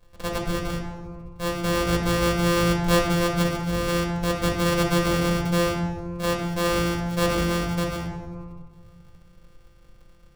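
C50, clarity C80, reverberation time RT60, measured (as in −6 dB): 4.0 dB, 6.0 dB, 1.9 s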